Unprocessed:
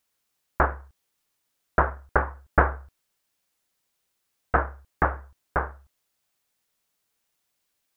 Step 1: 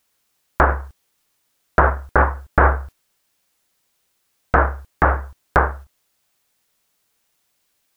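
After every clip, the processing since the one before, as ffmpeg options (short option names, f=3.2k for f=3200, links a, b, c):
-af "agate=range=-6dB:threshold=-47dB:ratio=16:detection=peak,alimiter=level_in=15dB:limit=-1dB:release=50:level=0:latency=1,volume=-1dB"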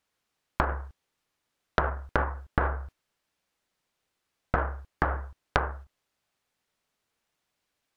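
-af "acompressor=threshold=-16dB:ratio=8,aeval=exprs='0.794*(cos(1*acos(clip(val(0)/0.794,-1,1)))-cos(1*PI/2))+0.224*(cos(3*acos(clip(val(0)/0.794,-1,1)))-cos(3*PI/2))+0.0562*(cos(5*acos(clip(val(0)/0.794,-1,1)))-cos(5*PI/2))+0.0178*(cos(6*acos(clip(val(0)/0.794,-1,1)))-cos(6*PI/2))':c=same,aemphasis=mode=reproduction:type=50kf"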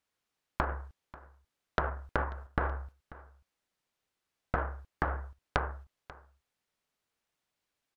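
-af "aecho=1:1:539:0.106,volume=-5dB"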